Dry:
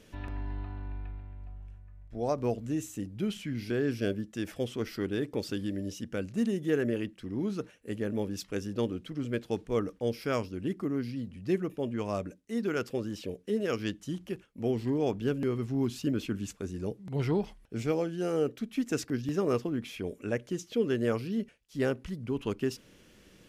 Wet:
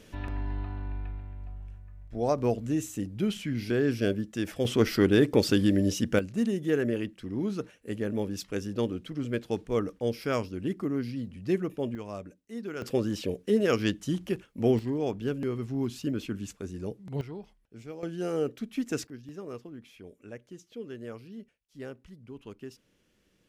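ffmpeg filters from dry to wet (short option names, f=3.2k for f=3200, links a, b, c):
-af "asetnsamples=n=441:p=0,asendcmd='4.65 volume volume 10.5dB;6.19 volume volume 1.5dB;11.95 volume volume -6dB;12.82 volume volume 6dB;14.79 volume volume -1dB;17.21 volume volume -12.5dB;18.03 volume volume -0.5dB;19.07 volume volume -12dB',volume=3.5dB"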